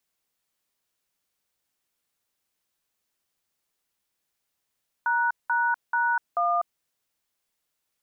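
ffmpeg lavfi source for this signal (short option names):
-f lavfi -i "aevalsrc='0.0668*clip(min(mod(t,0.436),0.247-mod(t,0.436))/0.002,0,1)*(eq(floor(t/0.436),0)*(sin(2*PI*941*mod(t,0.436))+sin(2*PI*1477*mod(t,0.436)))+eq(floor(t/0.436),1)*(sin(2*PI*941*mod(t,0.436))+sin(2*PI*1477*mod(t,0.436)))+eq(floor(t/0.436),2)*(sin(2*PI*941*mod(t,0.436))+sin(2*PI*1477*mod(t,0.436)))+eq(floor(t/0.436),3)*(sin(2*PI*697*mod(t,0.436))+sin(2*PI*1209*mod(t,0.436))))':d=1.744:s=44100"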